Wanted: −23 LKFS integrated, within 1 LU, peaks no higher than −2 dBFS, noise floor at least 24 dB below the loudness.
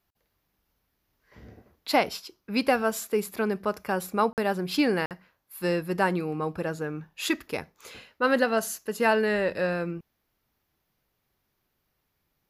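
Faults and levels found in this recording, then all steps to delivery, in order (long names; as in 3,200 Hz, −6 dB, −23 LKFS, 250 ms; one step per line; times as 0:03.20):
number of dropouts 2; longest dropout 48 ms; integrated loudness −27.5 LKFS; sample peak −10.0 dBFS; target loudness −23.0 LKFS
→ repair the gap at 0:04.33/0:05.06, 48 ms
level +4.5 dB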